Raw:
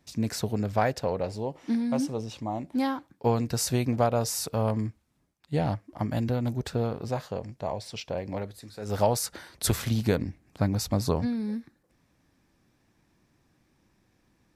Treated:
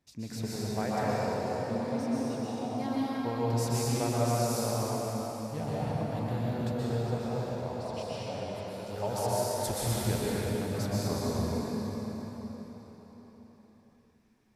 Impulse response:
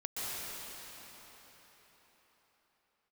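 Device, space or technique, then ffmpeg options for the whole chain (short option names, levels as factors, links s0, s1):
cathedral: -filter_complex "[1:a]atrim=start_sample=2205[s0];[0:a][s0]afir=irnorm=-1:irlink=0,volume=0.447"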